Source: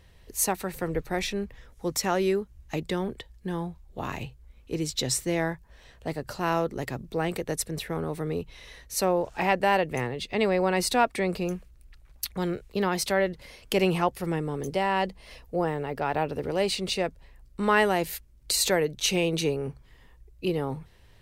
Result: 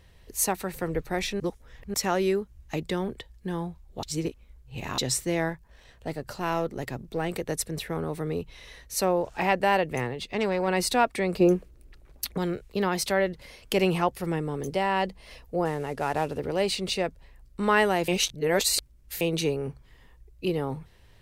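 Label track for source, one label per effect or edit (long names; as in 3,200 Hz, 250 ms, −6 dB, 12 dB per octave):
1.400000	1.940000	reverse
4.030000	4.980000	reverse
5.490000	7.340000	gain on one half-wave negative side −3 dB
10.130000	10.680000	tube saturation drive 18 dB, bias 0.4
11.400000	12.380000	parametric band 370 Hz +12.5 dB 1.9 octaves
15.650000	16.380000	variable-slope delta modulation 64 kbit/s
18.080000	19.210000	reverse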